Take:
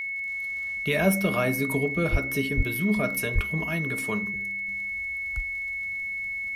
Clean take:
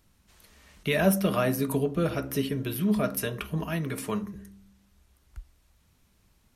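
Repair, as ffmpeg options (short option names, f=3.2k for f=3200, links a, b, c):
-filter_complex "[0:a]adeclick=t=4,bandreject=f=2.2k:w=30,asplit=3[a][b][c];[a]afade=t=out:st=2.11:d=0.02[d];[b]highpass=f=140:w=0.5412,highpass=f=140:w=1.3066,afade=t=in:st=2.11:d=0.02,afade=t=out:st=2.23:d=0.02[e];[c]afade=t=in:st=2.23:d=0.02[f];[d][e][f]amix=inputs=3:normalize=0,asplit=3[g][h][i];[g]afade=t=out:st=2.56:d=0.02[j];[h]highpass=f=140:w=0.5412,highpass=f=140:w=1.3066,afade=t=in:st=2.56:d=0.02,afade=t=out:st=2.68:d=0.02[k];[i]afade=t=in:st=2.68:d=0.02[l];[j][k][l]amix=inputs=3:normalize=0,asplit=3[m][n][o];[m]afade=t=out:st=3.34:d=0.02[p];[n]highpass=f=140:w=0.5412,highpass=f=140:w=1.3066,afade=t=in:st=3.34:d=0.02,afade=t=out:st=3.46:d=0.02[q];[o]afade=t=in:st=3.46:d=0.02[r];[p][q][r]amix=inputs=3:normalize=0,asetnsamples=n=441:p=0,asendcmd='4.68 volume volume -8.5dB',volume=0dB"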